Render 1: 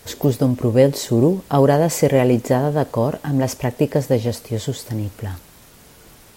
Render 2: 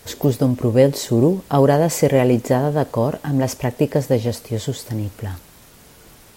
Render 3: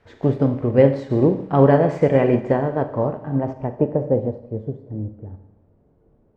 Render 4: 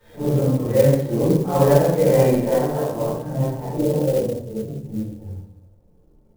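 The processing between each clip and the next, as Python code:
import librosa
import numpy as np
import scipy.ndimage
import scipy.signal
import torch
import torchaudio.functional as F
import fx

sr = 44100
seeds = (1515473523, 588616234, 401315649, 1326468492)

y1 = x
y2 = fx.filter_sweep_lowpass(y1, sr, from_hz=1900.0, to_hz=500.0, start_s=2.49, end_s=4.72, q=1.0)
y2 = fx.rev_schroeder(y2, sr, rt60_s=1.0, comb_ms=29, drr_db=5.5)
y2 = fx.upward_expand(y2, sr, threshold_db=-31.0, expansion=1.5)
y3 = fx.phase_scramble(y2, sr, seeds[0], window_ms=200)
y3 = fx.room_shoebox(y3, sr, seeds[1], volume_m3=170.0, walls='furnished', distance_m=4.6)
y3 = fx.clock_jitter(y3, sr, seeds[2], jitter_ms=0.033)
y3 = y3 * librosa.db_to_amplitude(-11.0)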